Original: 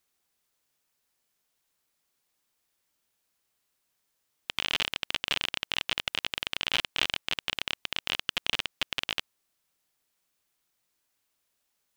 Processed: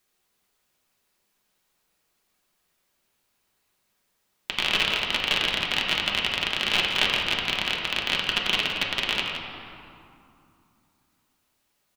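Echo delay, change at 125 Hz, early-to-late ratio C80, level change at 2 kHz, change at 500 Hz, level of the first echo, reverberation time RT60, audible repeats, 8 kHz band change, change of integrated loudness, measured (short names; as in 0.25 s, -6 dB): 0.169 s, +8.5 dB, 2.0 dB, +7.0 dB, +8.5 dB, -9.0 dB, 2.6 s, 1, +4.0 dB, +6.5 dB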